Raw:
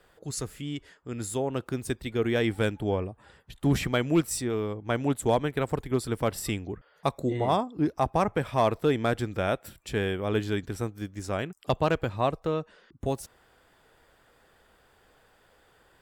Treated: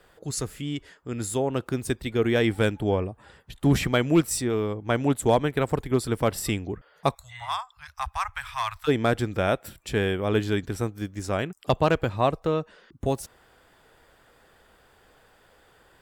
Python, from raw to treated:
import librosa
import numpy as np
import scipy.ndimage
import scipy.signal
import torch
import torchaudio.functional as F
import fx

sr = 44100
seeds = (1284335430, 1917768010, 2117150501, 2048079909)

y = fx.cheby2_bandstop(x, sr, low_hz=200.0, high_hz=410.0, order=4, stop_db=70, at=(7.14, 8.87), fade=0.02)
y = F.gain(torch.from_numpy(y), 3.5).numpy()